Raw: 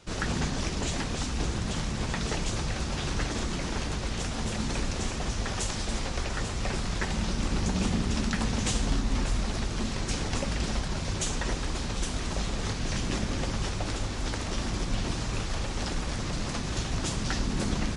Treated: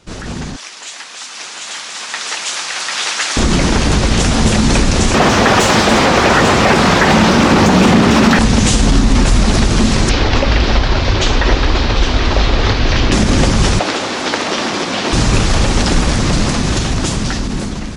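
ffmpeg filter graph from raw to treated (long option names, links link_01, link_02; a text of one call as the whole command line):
ffmpeg -i in.wav -filter_complex "[0:a]asettb=1/sr,asplit=3[link_01][link_02][link_03];[link_01]atrim=end=0.564[link_04];[link_02]atrim=start=0.56:end=3.37,asetpts=PTS-STARTPTS,afade=type=in:duration=0.004:curve=qsin,afade=type=out:start_time=2.806:duration=0.004:curve=qsin,highpass=1200,aecho=1:1:746:0.596,atrim=end_sample=123921[link_05];[link_03]atrim=start=3.366[link_06];[link_04][link_05]acrossfade=duration=0.004:curve1=hsin:curve2=qsin[link_07];[link_07][link_06]acrossfade=duration=0.004:curve1=qsin:curve2=hsin,asettb=1/sr,asplit=3[link_08][link_09][link_10];[link_08]atrim=end=5.144[link_11];[link_09]atrim=start=5.14:end=8.39,asetpts=PTS-STARTPTS,afade=type=in:duration=0.004:curve=qsin,afade=type=out:start_time=3.246:duration=0.004:curve=qsin,highpass=73,asplit=2[link_12][link_13];[link_13]highpass=frequency=720:poles=1,volume=21dB,asoftclip=type=tanh:threshold=-14.5dB[link_14];[link_12][link_14]amix=inputs=2:normalize=0,lowpass=frequency=1200:poles=1,volume=-6dB[link_15];[link_10]atrim=start=8.386[link_16];[link_11][link_15]acrossfade=duration=0.004:curve1=hsin:curve2=qsin[link_17];[link_17][link_16]acrossfade=duration=0.004:curve1=qsin:curve2=hsin,asettb=1/sr,asplit=3[link_18][link_19][link_20];[link_18]atrim=end=10.094[link_21];[link_19]atrim=start=10.09:end=13.12,asetpts=PTS-STARTPTS,afade=type=in:duration=0.004:curve=qsin,afade=type=out:start_time=3.026:duration=0.004:curve=qsin,lowpass=frequency=4700:width=0.5412,lowpass=frequency=4700:width=1.3066,equalizer=frequency=180:width=2.1:gain=-13[link_22];[link_20]atrim=start=13.116[link_23];[link_21][link_22]acrossfade=duration=0.004:curve1=hsin:curve2=qsin[link_24];[link_24][link_23]acrossfade=duration=0.004:curve1=qsin:curve2=hsin,asettb=1/sr,asplit=3[link_25][link_26][link_27];[link_25]atrim=end=13.794[link_28];[link_26]atrim=start=13.79:end=15.13,asetpts=PTS-STARTPTS,afade=type=in:duration=0.004:curve=qsin,afade=type=out:start_time=1.336:duration=0.004:curve=qsin,highpass=370,acrossover=split=5500[link_29][link_30];[link_30]acompressor=threshold=-56dB:ratio=4:attack=1:release=60[link_31];[link_29][link_31]amix=inputs=2:normalize=0[link_32];[link_27]atrim=start=15.126[link_33];[link_28][link_32]acrossfade=duration=0.004:curve1=hsin:curve2=qsin[link_34];[link_34][link_33]acrossfade=duration=0.004:curve1=qsin:curve2=hsin,equalizer=frequency=240:width=1.2:gain=2.5,alimiter=limit=-21dB:level=0:latency=1:release=57,dynaudnorm=framelen=970:gausssize=5:maxgain=14dB,volume=5.5dB" out.wav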